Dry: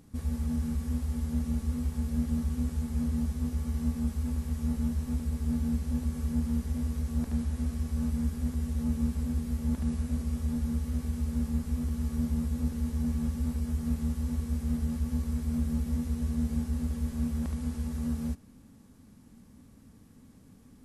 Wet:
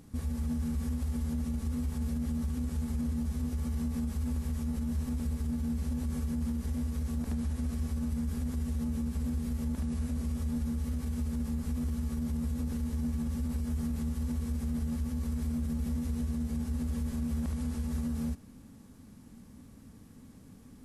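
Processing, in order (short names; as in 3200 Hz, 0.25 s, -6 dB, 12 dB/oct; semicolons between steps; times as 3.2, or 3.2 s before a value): limiter -28.5 dBFS, peak gain reduction 10.5 dB; gain +2.5 dB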